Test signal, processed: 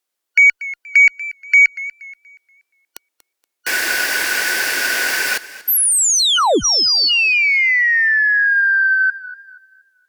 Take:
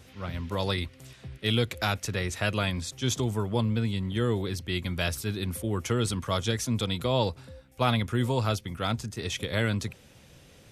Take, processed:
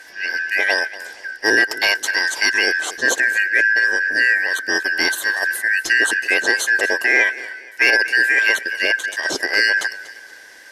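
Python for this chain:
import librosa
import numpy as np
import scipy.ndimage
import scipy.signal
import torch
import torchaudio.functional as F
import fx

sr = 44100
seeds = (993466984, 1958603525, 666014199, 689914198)

y = fx.band_shuffle(x, sr, order='3142')
y = fx.low_shelf_res(y, sr, hz=230.0, db=-12.0, q=1.5)
y = fx.cheby_harmonics(y, sr, harmonics=(2, 5), levels_db=(-44, -29), full_scale_db=-9.5)
y = fx.echo_warbled(y, sr, ms=238, feedback_pct=35, rate_hz=2.8, cents=58, wet_db=-17.0)
y = y * 10.0 ** (9.0 / 20.0)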